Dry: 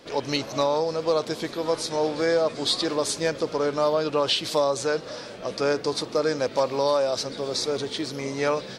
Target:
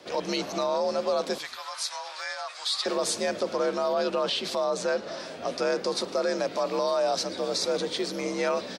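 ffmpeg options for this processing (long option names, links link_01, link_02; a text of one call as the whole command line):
ffmpeg -i in.wav -filter_complex "[0:a]afreqshift=54,alimiter=limit=-18dB:level=0:latency=1:release=19,asettb=1/sr,asplit=3[link_01][link_02][link_03];[link_01]atrim=end=1.384[link_04];[link_02]atrim=start=1.38:end=2.86,asetpts=PTS-STARTPTS,afade=type=in:duration=0.004:curve=qsin,afade=type=out:start_time=1.476:duration=0.004:curve=qsin,highpass=frequency=970:width=0.5412,highpass=frequency=970:width=1.3066[link_05];[link_03]atrim=start=2.856[link_06];[link_04][link_05]acrossfade=duration=0.004:curve1=hsin:curve2=qsin[link_07];[link_07][link_06]acrossfade=duration=0.004:curve1=qsin:curve2=hsin,asettb=1/sr,asplit=3[link_08][link_09][link_10];[link_08]atrim=end=4.234[link_11];[link_09]atrim=start=4.23:end=5.2,asetpts=PTS-STARTPTS,afade=type=in:duration=0.004:curve=qsin,afade=type=out:start_time=0.966:duration=0.004:curve=qsin,highshelf=frequency=7400:gain=-9.5[link_12];[link_10]atrim=start=5.196[link_13];[link_11][link_12]acrossfade=duration=0.004:curve1=hsin:curve2=qsin[link_14];[link_14][link_13]acrossfade=duration=0.004:curve1=qsin:curve2=hsin,asplit=3[link_15][link_16][link_17];[link_16]adelay=110,afreqshift=-66,volume=-23dB[link_18];[link_17]adelay=220,afreqshift=-132,volume=-33.5dB[link_19];[link_15][link_18][link_19]amix=inputs=3:normalize=0" out.wav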